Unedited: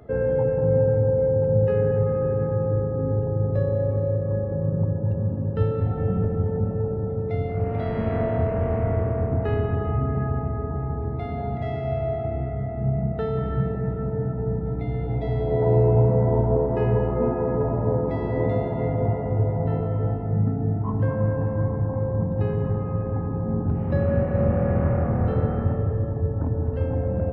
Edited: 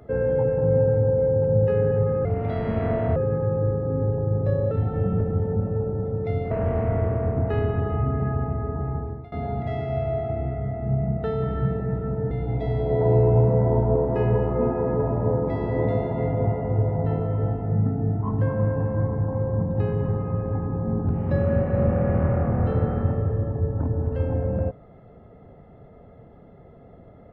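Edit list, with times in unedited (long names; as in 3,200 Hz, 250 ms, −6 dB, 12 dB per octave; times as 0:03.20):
0:03.80–0:05.75: remove
0:07.55–0:08.46: move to 0:02.25
0:10.90–0:11.27: fade out, to −21.5 dB
0:14.26–0:14.92: remove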